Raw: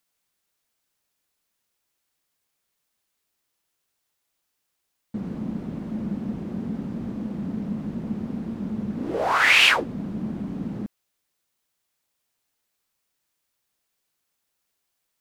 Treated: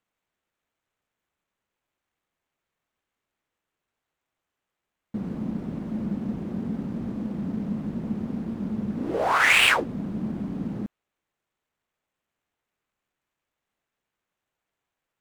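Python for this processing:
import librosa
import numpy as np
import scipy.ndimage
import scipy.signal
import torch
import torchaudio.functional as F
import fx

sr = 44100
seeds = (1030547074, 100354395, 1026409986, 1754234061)

y = scipy.ndimage.median_filter(x, 9, mode='constant')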